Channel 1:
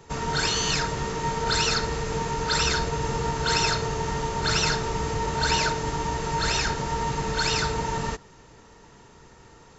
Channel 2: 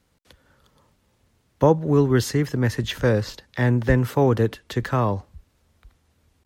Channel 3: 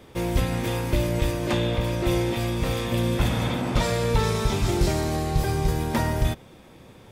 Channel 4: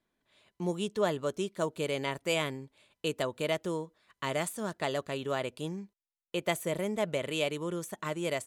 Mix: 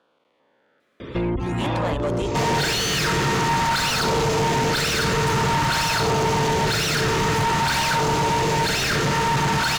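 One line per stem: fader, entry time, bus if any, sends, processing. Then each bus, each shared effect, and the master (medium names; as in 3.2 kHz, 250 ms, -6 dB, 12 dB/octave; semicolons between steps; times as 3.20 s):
-4.5 dB, 2.25 s, no bus, no send, one-sided wavefolder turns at -21.5 dBFS; peaking EQ 130 Hz +10.5 dB 1.6 oct
-11.5 dB, 0.00 s, bus A, no send, spectrogram pixelated in time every 400 ms; three-band isolator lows -23 dB, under 200 Hz, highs -16 dB, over 2.7 kHz; upward expansion 1.5:1, over -44 dBFS
-14.5 dB, 1.00 s, bus A, no send, spectral gate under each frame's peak -25 dB strong; bass shelf 480 Hz +11 dB
-12.5 dB, 0.80 s, no bus, no send, peak limiter -26 dBFS, peak gain reduction 10.5 dB
bus A: 0.0 dB, bass shelf 86 Hz +9 dB; compression 6:1, threshold -33 dBFS, peak gain reduction 17.5 dB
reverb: none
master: LFO notch saw down 0.5 Hz 340–2100 Hz; overdrive pedal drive 36 dB, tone 2.9 kHz, clips at -13 dBFS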